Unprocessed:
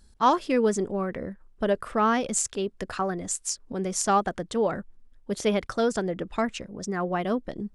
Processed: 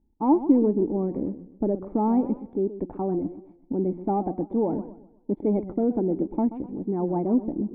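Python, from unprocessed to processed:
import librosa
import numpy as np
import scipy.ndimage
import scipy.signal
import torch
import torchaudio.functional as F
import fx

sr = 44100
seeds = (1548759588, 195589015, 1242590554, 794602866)

y = fx.leveller(x, sr, passes=2)
y = fx.formant_cascade(y, sr, vowel='u')
y = fx.echo_warbled(y, sr, ms=126, feedback_pct=36, rate_hz=2.8, cents=154, wet_db=-13.5)
y = F.gain(torch.from_numpy(y), 6.5).numpy()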